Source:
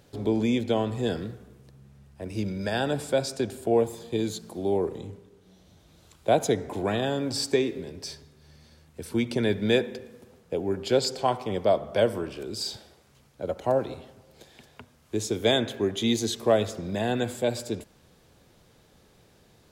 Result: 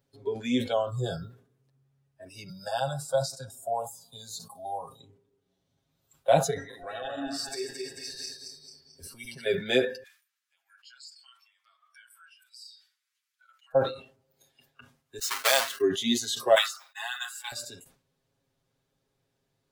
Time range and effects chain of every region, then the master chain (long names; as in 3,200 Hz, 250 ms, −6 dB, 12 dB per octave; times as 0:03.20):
0:00.72–0:01.30: parametric band 78 Hz +6 dB 0.89 octaves + bit-depth reduction 12 bits, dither none + Butterworth band-reject 2,200 Hz, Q 1.3
0:02.49–0:05.00: phaser with its sweep stopped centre 840 Hz, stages 4 + multiband upward and downward compressor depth 40%
0:06.50–0:09.46: feedback delay that plays each chunk backwards 110 ms, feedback 70%, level −1.5 dB + downward compressor 5 to 1, threshold −29 dBFS
0:10.03–0:13.75: inverse Chebyshev high-pass filter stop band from 430 Hz, stop band 60 dB + downward compressor 3 to 1, threshold −51 dBFS + one half of a high-frequency compander encoder only
0:15.19–0:15.81: each half-wave held at its own peak + high-pass filter 1,200 Hz 6 dB per octave + downward expander −36 dBFS
0:16.55–0:17.52: mu-law and A-law mismatch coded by mu + Butterworth high-pass 830 Hz 48 dB per octave + downward expander −38 dBFS
whole clip: noise reduction from a noise print of the clip's start 19 dB; comb filter 7.4 ms, depth 86%; level that may fall only so fast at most 130 dB per second; level −2 dB